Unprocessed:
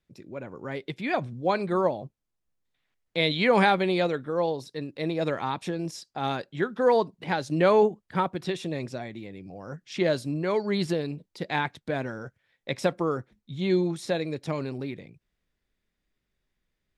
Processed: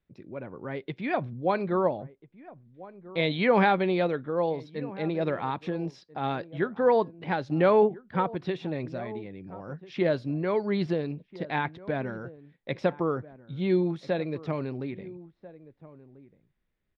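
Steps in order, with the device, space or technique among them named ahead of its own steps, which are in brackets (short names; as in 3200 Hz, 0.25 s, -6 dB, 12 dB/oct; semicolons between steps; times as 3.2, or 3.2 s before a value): shout across a valley (air absorption 260 m; outdoor echo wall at 230 m, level -18 dB)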